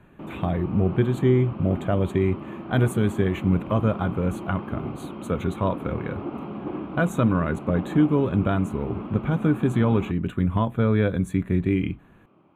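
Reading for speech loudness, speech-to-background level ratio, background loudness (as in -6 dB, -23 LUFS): -24.0 LUFS, 11.0 dB, -35.0 LUFS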